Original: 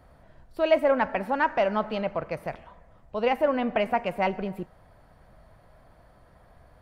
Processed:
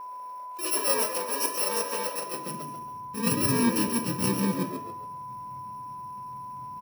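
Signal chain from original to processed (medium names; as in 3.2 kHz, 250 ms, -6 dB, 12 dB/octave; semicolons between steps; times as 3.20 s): bit-reversed sample order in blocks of 64 samples; reverberation RT60 0.50 s, pre-delay 3 ms, DRR 5 dB; high-pass sweep 560 Hz -> 120 Hz, 2.18–2.78 s; frequency-shifting echo 138 ms, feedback 36%, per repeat +80 Hz, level -8 dB; whistle 1 kHz -39 dBFS; treble shelf 4.4 kHz -10 dB; attacks held to a fixed rise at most 130 dB/s; trim +3 dB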